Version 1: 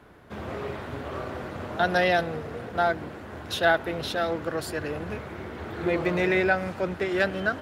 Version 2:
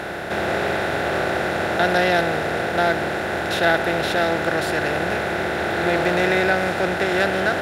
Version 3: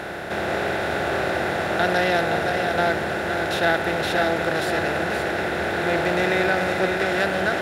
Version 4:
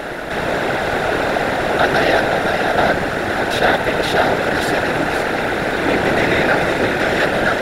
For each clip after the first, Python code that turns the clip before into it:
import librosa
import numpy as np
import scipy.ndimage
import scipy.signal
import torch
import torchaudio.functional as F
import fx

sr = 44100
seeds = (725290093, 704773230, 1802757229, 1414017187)

y1 = fx.bin_compress(x, sr, power=0.4)
y2 = y1 + 10.0 ** (-6.0 / 20.0) * np.pad(y1, (int(520 * sr / 1000.0), 0))[:len(y1)]
y2 = y2 * 10.0 ** (-2.5 / 20.0)
y3 = fx.whisperise(y2, sr, seeds[0])
y3 = y3 * 10.0 ** (5.5 / 20.0)